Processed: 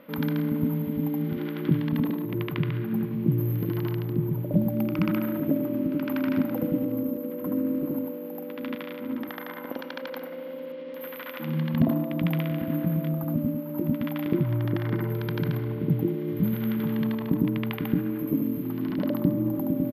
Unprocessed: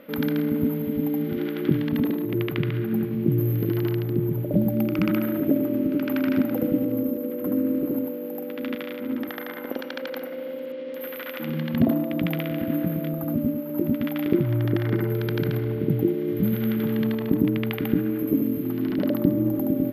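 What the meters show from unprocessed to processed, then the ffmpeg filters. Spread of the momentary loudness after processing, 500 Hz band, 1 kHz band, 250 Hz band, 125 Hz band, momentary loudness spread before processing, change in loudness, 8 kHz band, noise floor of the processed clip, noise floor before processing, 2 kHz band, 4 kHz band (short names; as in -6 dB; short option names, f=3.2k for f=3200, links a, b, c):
10 LU, -5.0 dB, -0.5 dB, -3.0 dB, -1.0 dB, 10 LU, -2.5 dB, n/a, -38 dBFS, -34 dBFS, -3.0 dB, -3.5 dB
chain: -af "equalizer=f=160:t=o:w=0.33:g=7,equalizer=f=400:t=o:w=0.33:g=-5,equalizer=f=1k:t=o:w=0.33:g=8,equalizer=f=8k:t=o:w=0.33:g=-12,aecho=1:1:99:0.0891,volume=-3.5dB"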